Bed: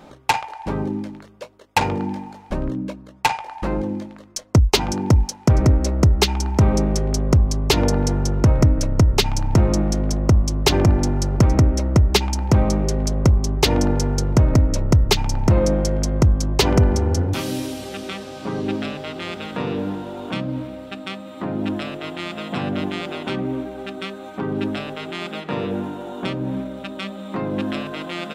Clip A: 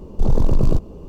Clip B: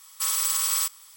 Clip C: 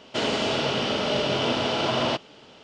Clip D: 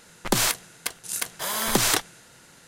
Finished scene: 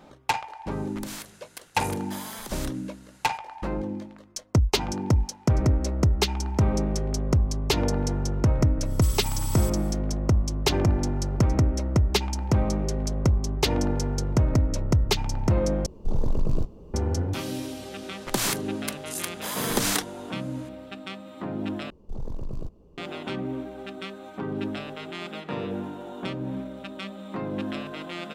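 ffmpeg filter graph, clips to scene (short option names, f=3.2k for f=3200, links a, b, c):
-filter_complex "[4:a]asplit=2[a][b];[1:a]asplit=2[c][d];[0:a]volume=-6.5dB[e];[a]acompressor=threshold=-29dB:ratio=6:attack=3.2:release=140:knee=1:detection=peak[f];[2:a]acompressor=threshold=-32dB:ratio=6:attack=3.2:release=140:knee=1:detection=peak[g];[c]flanger=delay=4.5:depth=7.2:regen=-63:speed=1.9:shape=sinusoidal[h];[e]asplit=3[i][j][k];[i]atrim=end=15.864[l];[h]atrim=end=1.08,asetpts=PTS-STARTPTS,volume=-4.5dB[m];[j]atrim=start=16.936:end=21.904[n];[d]atrim=end=1.08,asetpts=PTS-STARTPTS,volume=-17.5dB[o];[k]atrim=start=22.976[p];[f]atrim=end=2.67,asetpts=PTS-STARTPTS,volume=-6dB,afade=t=in:d=0.004:c=hsin,afade=t=out:st=2.666:d=0.004:c=hsin,adelay=710[q];[g]atrim=end=1.16,asetpts=PTS-STARTPTS,volume=-2dB,afade=t=in:d=0.1,afade=t=out:st=1.06:d=0.1,adelay=388962S[r];[b]atrim=end=2.67,asetpts=PTS-STARTPTS,volume=-4dB,afade=t=in:d=0.004:c=hsin,afade=t=out:st=2.666:d=0.004:c=hsin,adelay=18020[s];[l][m]acrossfade=d=0.004:c1=hsin:c2=hsin[t];[t][n]acrossfade=d=0.004:c1=hsin:c2=hsin[u];[u][o]acrossfade=d=0.004:c1=hsin:c2=hsin[v];[v][p]acrossfade=d=0.004:c1=hsin:c2=hsin[w];[w][q][r][s]amix=inputs=4:normalize=0"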